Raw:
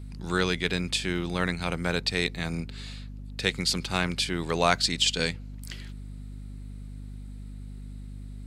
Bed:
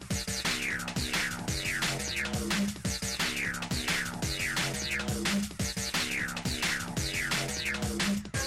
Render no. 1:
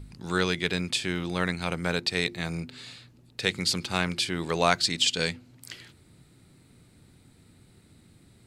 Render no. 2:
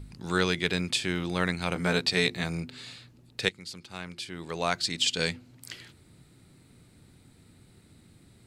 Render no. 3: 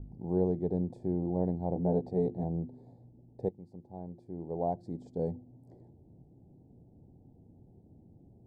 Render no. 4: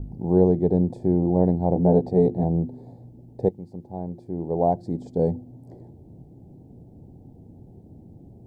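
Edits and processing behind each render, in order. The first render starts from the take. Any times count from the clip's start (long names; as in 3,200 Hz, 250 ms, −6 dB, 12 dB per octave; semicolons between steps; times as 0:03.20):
hum removal 50 Hz, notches 7
0:01.74–0:02.44: double-tracking delay 16 ms −3 dB; 0:03.49–0:05.32: fade in quadratic, from −15.5 dB
elliptic low-pass filter 810 Hz, stop band 40 dB
level +11 dB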